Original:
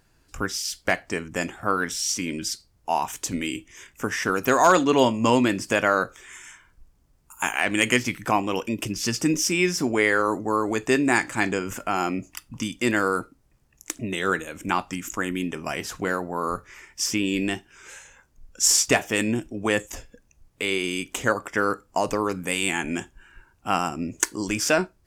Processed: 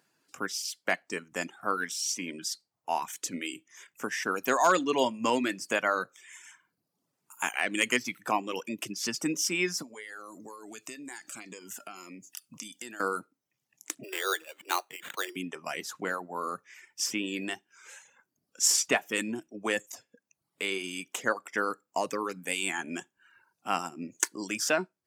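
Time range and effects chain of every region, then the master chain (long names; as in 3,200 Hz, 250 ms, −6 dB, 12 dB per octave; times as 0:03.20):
0:09.82–0:13.00: high-shelf EQ 3,200 Hz +11 dB + downward compressor, threshold −32 dBFS + phaser whose notches keep moving one way falling 1.8 Hz
0:14.03–0:15.36: Butterworth high-pass 330 Hz 96 dB per octave + sample-rate reduction 5,200 Hz
whole clip: reverb reduction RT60 0.71 s; high-pass filter 160 Hz 24 dB per octave; low-shelf EQ 480 Hz −4.5 dB; level −4.5 dB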